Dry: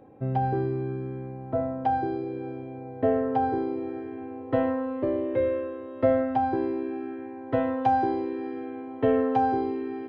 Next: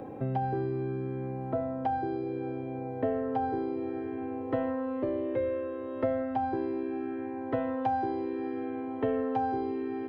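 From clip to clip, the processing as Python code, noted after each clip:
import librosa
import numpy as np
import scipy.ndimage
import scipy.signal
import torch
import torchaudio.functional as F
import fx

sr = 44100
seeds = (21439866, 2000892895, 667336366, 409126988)

y = fx.band_squash(x, sr, depth_pct=70)
y = y * librosa.db_to_amplitude(-5.0)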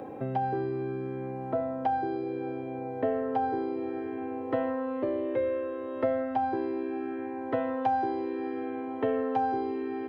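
y = fx.low_shelf(x, sr, hz=190.0, db=-10.0)
y = y * librosa.db_to_amplitude(3.0)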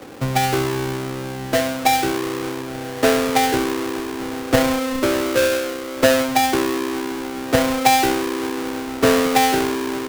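y = fx.halfwave_hold(x, sr)
y = fx.band_widen(y, sr, depth_pct=70)
y = y * librosa.db_to_amplitude(7.5)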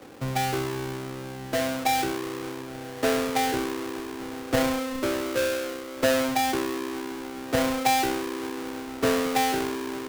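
y = fx.sustainer(x, sr, db_per_s=34.0)
y = y * librosa.db_to_amplitude(-8.5)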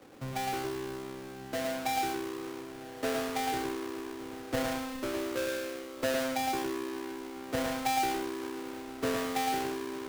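y = x + 10.0 ** (-4.0 / 20.0) * np.pad(x, (int(112 * sr / 1000.0), 0))[:len(x)]
y = y * librosa.db_to_amplitude(-8.5)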